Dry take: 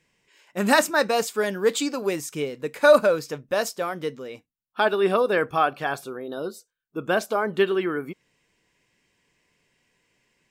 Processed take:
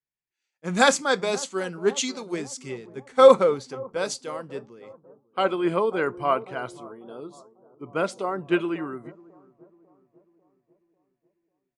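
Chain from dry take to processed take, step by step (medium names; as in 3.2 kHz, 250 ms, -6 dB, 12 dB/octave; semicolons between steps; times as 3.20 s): wide varispeed 0.892×; on a send: bucket-brigade echo 545 ms, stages 4096, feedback 66%, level -14.5 dB; on the sum: resampled via 22.05 kHz; three bands expanded up and down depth 70%; trim -4 dB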